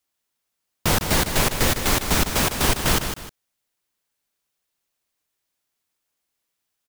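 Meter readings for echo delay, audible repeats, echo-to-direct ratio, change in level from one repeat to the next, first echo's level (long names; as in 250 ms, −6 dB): 154 ms, 2, −7.5 dB, −10.0 dB, −8.0 dB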